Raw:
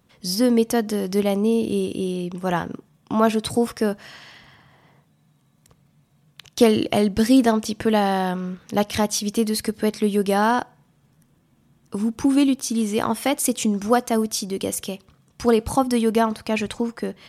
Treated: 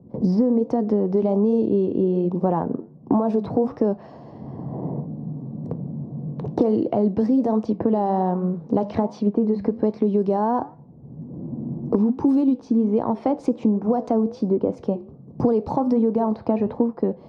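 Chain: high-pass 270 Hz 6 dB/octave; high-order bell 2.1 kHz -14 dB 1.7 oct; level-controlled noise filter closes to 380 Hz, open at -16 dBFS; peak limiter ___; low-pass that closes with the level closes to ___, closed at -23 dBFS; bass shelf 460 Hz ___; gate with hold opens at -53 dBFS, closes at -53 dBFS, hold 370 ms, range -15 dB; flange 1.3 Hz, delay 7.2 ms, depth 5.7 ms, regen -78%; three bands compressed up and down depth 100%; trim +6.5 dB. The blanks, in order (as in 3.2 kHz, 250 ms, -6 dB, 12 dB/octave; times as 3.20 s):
-17 dBFS, 1.4 kHz, +6 dB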